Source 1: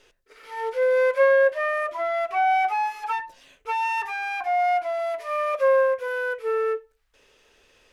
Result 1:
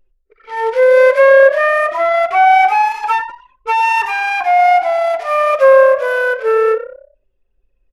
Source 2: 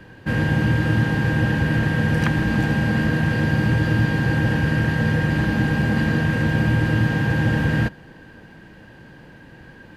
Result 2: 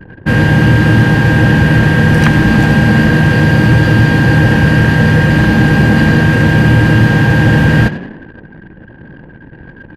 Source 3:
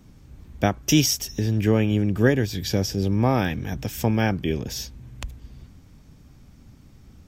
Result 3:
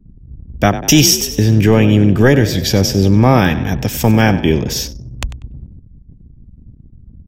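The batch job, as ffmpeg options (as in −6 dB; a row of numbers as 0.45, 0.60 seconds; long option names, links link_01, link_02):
-filter_complex "[0:a]asplit=6[link_01][link_02][link_03][link_04][link_05][link_06];[link_02]adelay=96,afreqshift=33,volume=-14.5dB[link_07];[link_03]adelay=192,afreqshift=66,volume=-20.2dB[link_08];[link_04]adelay=288,afreqshift=99,volume=-25.9dB[link_09];[link_05]adelay=384,afreqshift=132,volume=-31.5dB[link_10];[link_06]adelay=480,afreqshift=165,volume=-37.2dB[link_11];[link_01][link_07][link_08][link_09][link_10][link_11]amix=inputs=6:normalize=0,apsyclip=13dB,anlmdn=63.1,volume=-1.5dB"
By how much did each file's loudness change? +11.5, +11.0, +10.5 LU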